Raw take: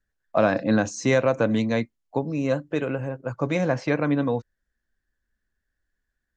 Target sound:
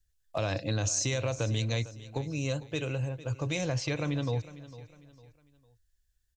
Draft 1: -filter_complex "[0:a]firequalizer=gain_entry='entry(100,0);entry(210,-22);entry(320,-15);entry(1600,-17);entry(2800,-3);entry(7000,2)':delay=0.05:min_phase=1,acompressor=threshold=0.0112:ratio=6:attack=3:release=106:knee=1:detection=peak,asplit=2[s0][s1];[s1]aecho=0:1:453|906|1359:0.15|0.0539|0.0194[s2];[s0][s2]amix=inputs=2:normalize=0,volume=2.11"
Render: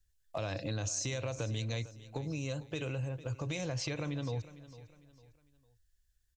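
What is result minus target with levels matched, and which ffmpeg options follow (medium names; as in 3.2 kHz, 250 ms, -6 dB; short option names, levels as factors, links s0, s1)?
compression: peak gain reduction +6.5 dB
-filter_complex "[0:a]firequalizer=gain_entry='entry(100,0);entry(210,-22);entry(320,-15);entry(1600,-17);entry(2800,-3);entry(7000,2)':delay=0.05:min_phase=1,acompressor=threshold=0.0266:ratio=6:attack=3:release=106:knee=1:detection=peak,asplit=2[s0][s1];[s1]aecho=0:1:453|906|1359:0.15|0.0539|0.0194[s2];[s0][s2]amix=inputs=2:normalize=0,volume=2.11"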